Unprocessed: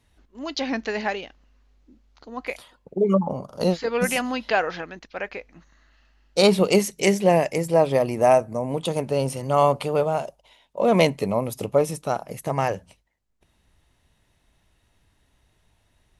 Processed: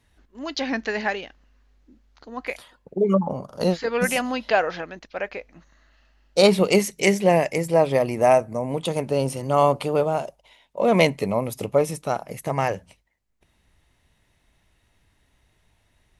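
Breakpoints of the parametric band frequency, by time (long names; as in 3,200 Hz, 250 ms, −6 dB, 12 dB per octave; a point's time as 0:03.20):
parametric band +4 dB 0.46 octaves
1,700 Hz
from 0:04.08 600 Hz
from 0:06.46 2,100 Hz
from 0:09.06 320 Hz
from 0:10.27 2,100 Hz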